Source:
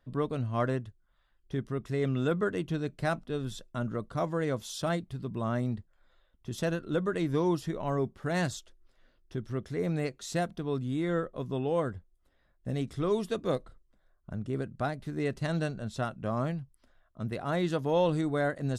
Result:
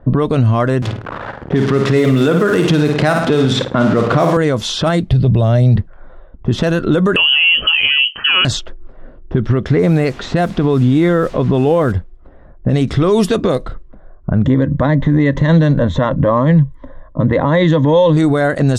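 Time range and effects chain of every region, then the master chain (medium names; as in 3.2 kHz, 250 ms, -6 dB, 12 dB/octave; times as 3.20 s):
0.82–4.37 s: jump at every zero crossing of -41.5 dBFS + high-pass 150 Hz + flutter echo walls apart 9.1 m, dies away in 0.44 s
5.10–5.76 s: FFT filter 120 Hz 0 dB, 220 Hz -11 dB, 340 Hz -10 dB, 620 Hz -3 dB, 1.1 kHz -18 dB, 4.4 kHz 0 dB, 7.3 kHz -4 dB, 11 kHz +7 dB + three bands compressed up and down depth 100%
7.16–8.45 s: compression, threshold -28 dBFS + peaking EQ 970 Hz -10 dB 0.49 oct + frequency inversion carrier 3.1 kHz
9.71–11.91 s: treble shelf 5.8 kHz -10 dB + added noise pink -62 dBFS
14.44–18.17 s: rippled EQ curve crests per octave 1.1, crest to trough 14 dB + compression 2.5:1, threshold -37 dBFS
whole clip: level-controlled noise filter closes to 770 Hz, open at -25.5 dBFS; compression 6:1, threshold -35 dBFS; loudness maximiser +33 dB; trim -3 dB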